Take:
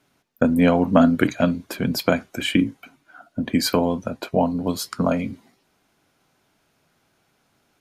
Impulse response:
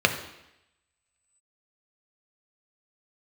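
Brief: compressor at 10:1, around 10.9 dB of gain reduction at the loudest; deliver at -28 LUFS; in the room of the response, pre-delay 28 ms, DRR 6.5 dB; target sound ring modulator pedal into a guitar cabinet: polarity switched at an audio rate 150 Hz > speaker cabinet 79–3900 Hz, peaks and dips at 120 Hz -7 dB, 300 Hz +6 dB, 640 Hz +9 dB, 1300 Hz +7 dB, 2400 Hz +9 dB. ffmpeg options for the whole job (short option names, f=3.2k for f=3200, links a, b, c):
-filter_complex "[0:a]acompressor=threshold=-21dB:ratio=10,asplit=2[a][b];[1:a]atrim=start_sample=2205,adelay=28[c];[b][c]afir=irnorm=-1:irlink=0,volume=-23.5dB[d];[a][d]amix=inputs=2:normalize=0,aeval=exprs='val(0)*sgn(sin(2*PI*150*n/s))':c=same,highpass=79,equalizer=f=120:t=q:w=4:g=-7,equalizer=f=300:t=q:w=4:g=6,equalizer=f=640:t=q:w=4:g=9,equalizer=f=1.3k:t=q:w=4:g=7,equalizer=f=2.4k:t=q:w=4:g=9,lowpass=f=3.9k:w=0.5412,lowpass=f=3.9k:w=1.3066,volume=-4dB"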